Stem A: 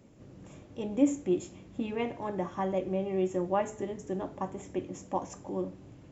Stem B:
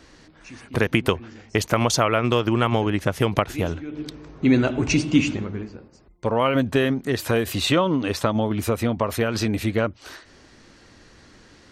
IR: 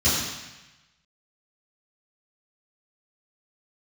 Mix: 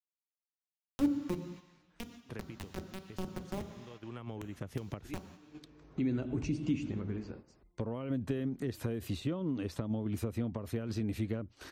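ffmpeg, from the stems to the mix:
-filter_complex "[0:a]highpass=f=220:p=1,acrusher=bits=3:mix=0:aa=0.000001,volume=0.794,asplit=3[s0][s1][s2];[s1]volume=0.0631[s3];[1:a]acompressor=threshold=0.0282:ratio=2,adelay=1550,volume=0.668[s4];[s2]apad=whole_len=585124[s5];[s4][s5]sidechaincompress=threshold=0.00631:ratio=20:attack=27:release=760[s6];[2:a]atrim=start_sample=2205[s7];[s3][s7]afir=irnorm=-1:irlink=0[s8];[s0][s6][s8]amix=inputs=3:normalize=0,agate=range=0.447:threshold=0.00447:ratio=16:detection=peak,acrossover=split=400[s9][s10];[s10]acompressor=threshold=0.00398:ratio=5[s11];[s9][s11]amix=inputs=2:normalize=0"

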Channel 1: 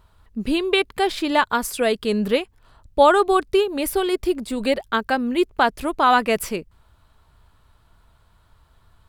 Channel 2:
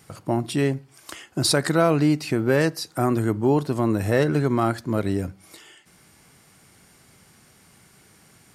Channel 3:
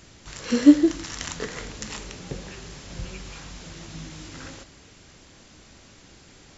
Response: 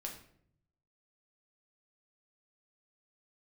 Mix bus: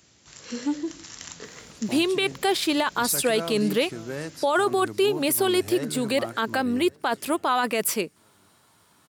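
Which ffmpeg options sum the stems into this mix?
-filter_complex "[0:a]highpass=180,adelay=1450,volume=1[s0];[1:a]lowpass=11000,adelay=1600,volume=0.2,asplit=2[s1][s2];[s2]volume=0.141[s3];[2:a]asoftclip=type=tanh:threshold=0.335,volume=0.316[s4];[s3]aecho=0:1:562|1124|1686|2248|2810|3372|3934:1|0.5|0.25|0.125|0.0625|0.0312|0.0156[s5];[s0][s1][s4][s5]amix=inputs=4:normalize=0,highpass=86,highshelf=f=4400:g=8.5,alimiter=limit=0.211:level=0:latency=1:release=18"

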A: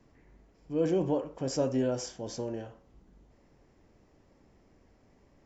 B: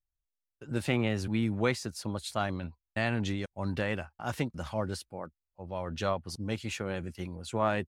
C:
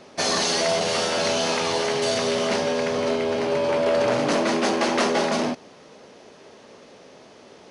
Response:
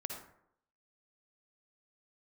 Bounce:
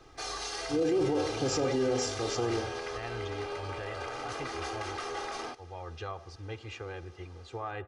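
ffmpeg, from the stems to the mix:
-filter_complex "[0:a]volume=0.944,asplit=2[s0][s1];[s1]volume=0.668[s2];[1:a]lowpass=f=6700:w=0.5412,lowpass=f=6700:w=1.3066,highshelf=f=3000:g=-11,volume=0.596,asplit=2[s3][s4];[s4]volume=0.168[s5];[2:a]equalizer=f=1300:w=4.2:g=7,volume=0.251[s6];[s3][s6]amix=inputs=2:normalize=0,equalizer=f=230:w=0.92:g=-10.5,alimiter=level_in=1.88:limit=0.0631:level=0:latency=1:release=103,volume=0.531,volume=1[s7];[3:a]atrim=start_sample=2205[s8];[s2][s5]amix=inputs=2:normalize=0[s9];[s9][s8]afir=irnorm=-1:irlink=0[s10];[s0][s7][s10]amix=inputs=3:normalize=0,aecho=1:1:2.5:0.82,alimiter=limit=0.0891:level=0:latency=1:release=14"

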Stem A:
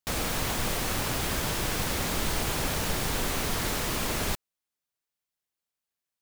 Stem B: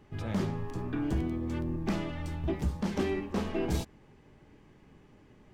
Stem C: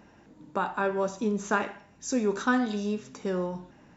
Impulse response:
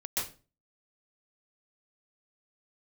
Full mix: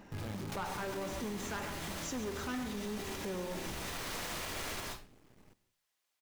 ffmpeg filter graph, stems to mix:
-filter_complex "[0:a]asoftclip=type=hard:threshold=0.0282,asplit=2[s0][s1];[s1]highpass=f=720:p=1,volume=7.08,asoftclip=type=tanh:threshold=0.0473[s2];[s0][s2]amix=inputs=2:normalize=0,lowpass=f=6100:p=1,volume=0.501,adelay=450,volume=0.398,asplit=2[s3][s4];[s4]volume=0.708[s5];[1:a]acompressor=threshold=0.0178:ratio=6,acrusher=bits=8:dc=4:mix=0:aa=0.000001,volume=0.75,asplit=2[s6][s7];[s7]volume=0.075[s8];[2:a]volume=17.8,asoftclip=hard,volume=0.0562,volume=0.841,asplit=3[s9][s10][s11];[s10]volume=0.211[s12];[s11]apad=whole_len=293921[s13];[s3][s13]sidechaincompress=threshold=0.00282:ratio=8:attack=16:release=441[s14];[3:a]atrim=start_sample=2205[s15];[s5][s8][s12]amix=inputs=3:normalize=0[s16];[s16][s15]afir=irnorm=-1:irlink=0[s17];[s14][s6][s9][s17]amix=inputs=4:normalize=0,alimiter=level_in=2.24:limit=0.0631:level=0:latency=1:release=118,volume=0.447"

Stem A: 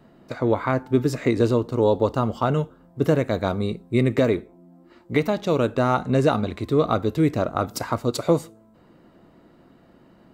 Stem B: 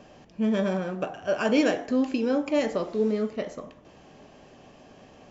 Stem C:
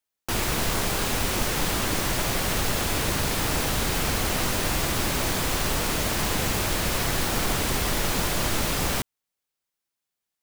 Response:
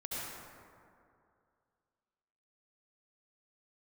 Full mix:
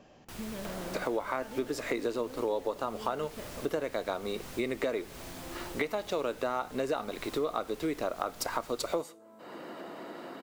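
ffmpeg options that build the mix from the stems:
-filter_complex "[0:a]acompressor=mode=upward:threshold=0.0447:ratio=2.5,highpass=410,adelay=650,volume=1.19[s0];[1:a]acompressor=threshold=0.0251:ratio=6,volume=0.473[s1];[2:a]volume=0.106[s2];[s0][s1][s2]amix=inputs=3:normalize=0,acompressor=threshold=0.0316:ratio=4"

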